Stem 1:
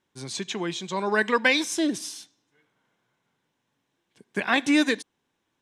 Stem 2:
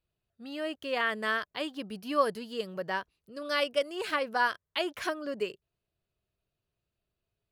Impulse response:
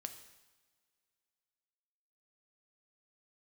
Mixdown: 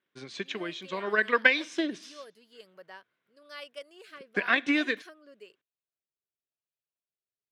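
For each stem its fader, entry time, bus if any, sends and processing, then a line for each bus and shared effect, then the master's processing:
−1.5 dB, 0.00 s, no send, low-pass filter 2,800 Hz 12 dB per octave; parametric band 860 Hz −14 dB 0.42 octaves; transient designer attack +7 dB, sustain +1 dB
−11.0 dB, 0.00 s, no send, rotating-speaker cabinet horn 1 Hz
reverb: not used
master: high-pass filter 630 Hz 6 dB per octave

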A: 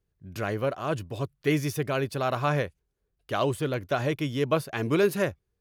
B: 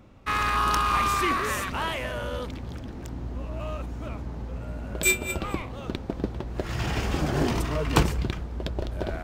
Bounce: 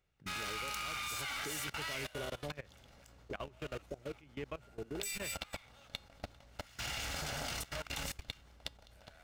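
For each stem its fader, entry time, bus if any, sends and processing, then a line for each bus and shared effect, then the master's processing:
−17.0 dB, 0.00 s, no send, auto-filter low-pass square 1.2 Hz 460–2,500 Hz; multiband upward and downward compressor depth 100%
0.0 dB, 0.00 s, no send, lower of the sound and its delayed copy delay 1.4 ms; tilt shelving filter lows −8.5 dB, about 1,300 Hz; tuned comb filter 280 Hz, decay 0.3 s, harmonics all, mix 60%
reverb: not used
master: output level in coarse steps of 20 dB

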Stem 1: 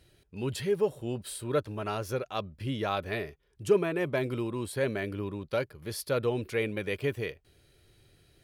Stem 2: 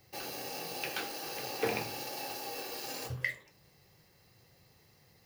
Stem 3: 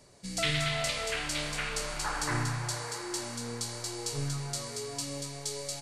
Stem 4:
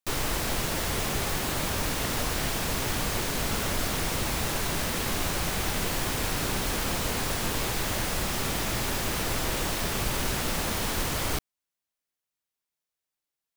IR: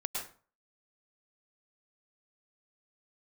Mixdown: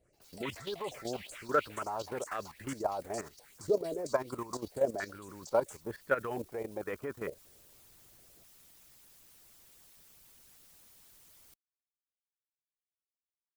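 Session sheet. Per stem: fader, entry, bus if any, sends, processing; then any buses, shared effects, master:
+1.5 dB, 0.00 s, no send, low-pass on a step sequencer 2.2 Hz 590–1,700 Hz
−15.5 dB, 0.00 s, no send, compressor whose output falls as the input rises −42 dBFS; amplitude modulation by smooth noise
−6.5 dB, 0.00 s, no send, auto-filter high-pass saw up 5.3 Hz 500–7,200 Hz; frequency shifter mixed with the dry sound −2.3 Hz
−19.0 dB, 0.15 s, no send, first-order pre-emphasis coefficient 0.8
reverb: not used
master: harmonic and percussive parts rebalanced harmonic −12 dB; output level in coarse steps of 12 dB

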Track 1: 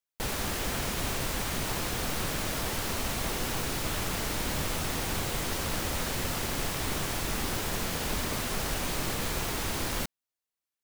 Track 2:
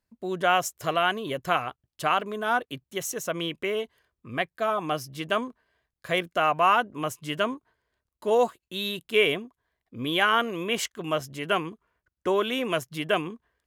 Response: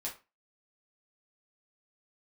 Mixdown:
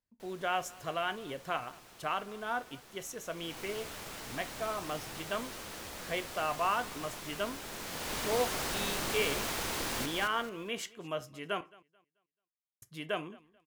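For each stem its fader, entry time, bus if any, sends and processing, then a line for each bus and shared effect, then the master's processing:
0:03.21 −23.5 dB → 0:03.61 −11.5 dB → 0:07.61 −11.5 dB → 0:08.20 −2.5 dB, 0.00 s, no send, echo send −5 dB, low-shelf EQ 180 Hz −10.5 dB
−12.0 dB, 0.00 s, muted 0:11.61–0:12.82, send −8 dB, echo send −21.5 dB, no processing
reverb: on, RT60 0.30 s, pre-delay 5 ms
echo: repeating echo 218 ms, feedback 28%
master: high-shelf EQ 12,000 Hz −4 dB

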